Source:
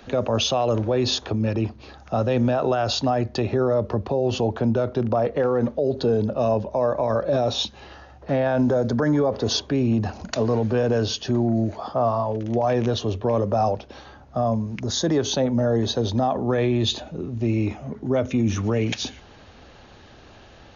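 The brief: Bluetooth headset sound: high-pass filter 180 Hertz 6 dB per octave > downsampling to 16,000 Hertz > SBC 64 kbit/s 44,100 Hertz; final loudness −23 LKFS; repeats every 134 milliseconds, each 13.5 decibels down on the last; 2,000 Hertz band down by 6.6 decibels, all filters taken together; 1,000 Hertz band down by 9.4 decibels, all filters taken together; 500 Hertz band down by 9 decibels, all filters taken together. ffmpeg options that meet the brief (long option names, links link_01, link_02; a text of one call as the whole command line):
ffmpeg -i in.wav -af "highpass=frequency=180:poles=1,equalizer=frequency=500:width_type=o:gain=-8,equalizer=frequency=1000:width_type=o:gain=-8.5,equalizer=frequency=2000:width_type=o:gain=-5.5,aecho=1:1:134|268:0.211|0.0444,aresample=16000,aresample=44100,volume=5.5dB" -ar 44100 -c:a sbc -b:a 64k out.sbc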